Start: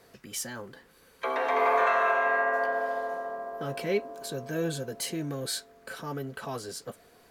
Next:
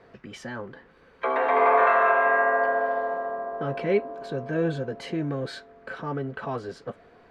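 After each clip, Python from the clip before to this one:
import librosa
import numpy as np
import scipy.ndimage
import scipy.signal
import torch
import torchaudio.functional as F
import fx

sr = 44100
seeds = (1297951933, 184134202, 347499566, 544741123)

y = scipy.signal.sosfilt(scipy.signal.butter(2, 2200.0, 'lowpass', fs=sr, output='sos'), x)
y = F.gain(torch.from_numpy(y), 5.0).numpy()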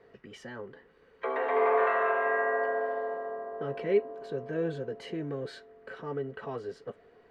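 y = fx.small_body(x, sr, hz=(430.0, 1900.0, 2900.0), ring_ms=35, db=9)
y = F.gain(torch.from_numpy(y), -8.5).numpy()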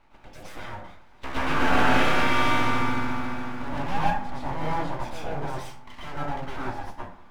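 y = np.abs(x)
y = fx.rev_plate(y, sr, seeds[0], rt60_s=0.54, hf_ratio=0.55, predelay_ms=100, drr_db=-7.5)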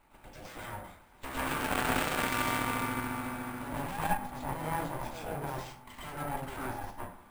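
y = fx.tube_stage(x, sr, drive_db=18.0, bias=0.65)
y = np.repeat(y[::4], 4)[:len(y)]
y = F.gain(torch.from_numpy(y), 1.0).numpy()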